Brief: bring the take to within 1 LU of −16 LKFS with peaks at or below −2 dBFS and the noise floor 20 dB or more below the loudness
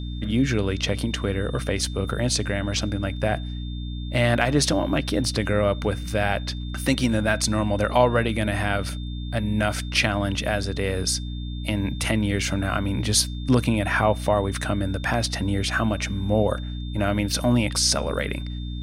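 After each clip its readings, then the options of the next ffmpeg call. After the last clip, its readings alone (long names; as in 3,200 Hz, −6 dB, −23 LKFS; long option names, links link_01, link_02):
mains hum 60 Hz; hum harmonics up to 300 Hz; level of the hum −28 dBFS; interfering tone 3,600 Hz; level of the tone −43 dBFS; integrated loudness −24.0 LKFS; sample peak −4.5 dBFS; target loudness −16.0 LKFS
→ -af "bandreject=frequency=60:width_type=h:width=4,bandreject=frequency=120:width_type=h:width=4,bandreject=frequency=180:width_type=h:width=4,bandreject=frequency=240:width_type=h:width=4,bandreject=frequency=300:width_type=h:width=4"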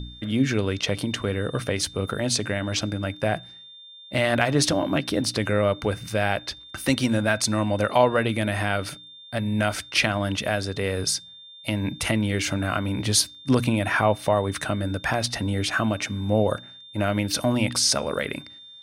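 mains hum none found; interfering tone 3,600 Hz; level of the tone −43 dBFS
→ -af "bandreject=frequency=3600:width=30"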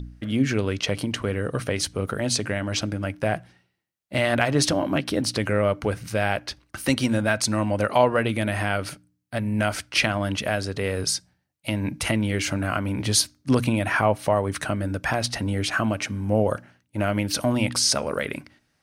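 interfering tone none found; integrated loudness −24.5 LKFS; sample peak −5.5 dBFS; target loudness −16.0 LKFS
→ -af "volume=8.5dB,alimiter=limit=-2dB:level=0:latency=1"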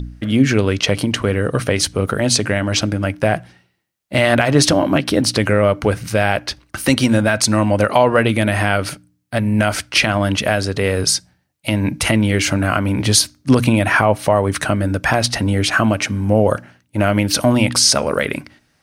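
integrated loudness −16.5 LKFS; sample peak −2.0 dBFS; background noise floor −63 dBFS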